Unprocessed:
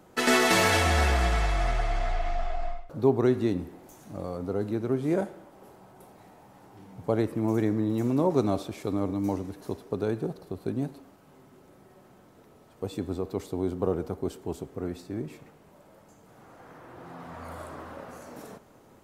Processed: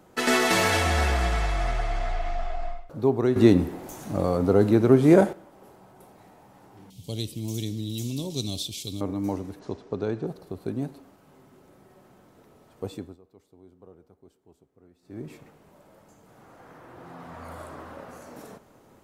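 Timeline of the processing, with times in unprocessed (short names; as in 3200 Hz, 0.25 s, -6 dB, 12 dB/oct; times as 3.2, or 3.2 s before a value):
3.36–5.33 gain +10.5 dB
6.9–9.01 EQ curve 120 Hz 0 dB, 1600 Hz -24 dB, 3200 Hz +15 dB, 14000 Hz +11 dB
9.59–10.27 LPF 6700 Hz 24 dB/oct
12.87–15.31 dip -23.5 dB, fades 0.30 s linear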